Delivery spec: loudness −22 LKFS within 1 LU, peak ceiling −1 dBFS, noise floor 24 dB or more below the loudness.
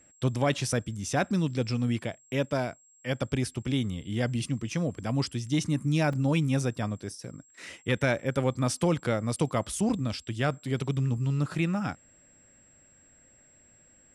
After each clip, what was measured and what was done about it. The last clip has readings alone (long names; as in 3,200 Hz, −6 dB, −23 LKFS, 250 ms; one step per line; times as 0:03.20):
number of dropouts 1; longest dropout 3.6 ms; interfering tone 7,600 Hz; level of the tone −58 dBFS; integrated loudness −29.5 LKFS; sample peak −13.0 dBFS; target loudness −22.0 LKFS
→ repair the gap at 0:06.13, 3.6 ms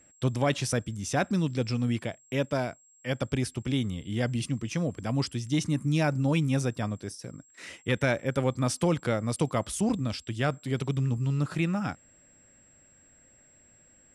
number of dropouts 0; interfering tone 7,600 Hz; level of the tone −58 dBFS
→ notch filter 7,600 Hz, Q 30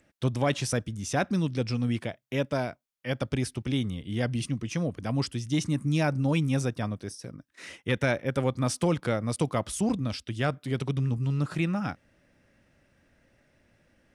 interfering tone none found; integrated loudness −29.5 LKFS; sample peak −13.0 dBFS; target loudness −22.0 LKFS
→ level +7.5 dB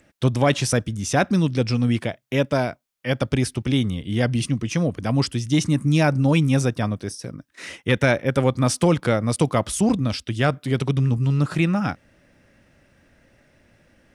integrated loudness −22.0 LKFS; sample peak −5.5 dBFS; background noise floor −62 dBFS